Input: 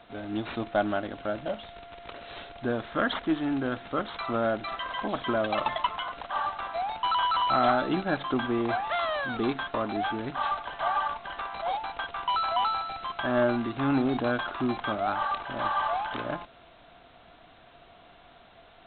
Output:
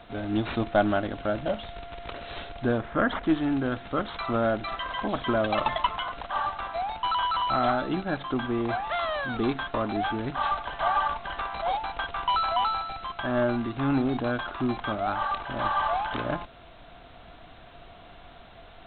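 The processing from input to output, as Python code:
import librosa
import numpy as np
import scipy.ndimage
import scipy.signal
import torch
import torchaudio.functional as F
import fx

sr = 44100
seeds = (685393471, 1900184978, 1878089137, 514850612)

y = fx.lowpass(x, sr, hz=2200.0, slope=12, at=(2.78, 3.23))
y = fx.low_shelf(y, sr, hz=110.0, db=10.0)
y = fx.rider(y, sr, range_db=10, speed_s=2.0)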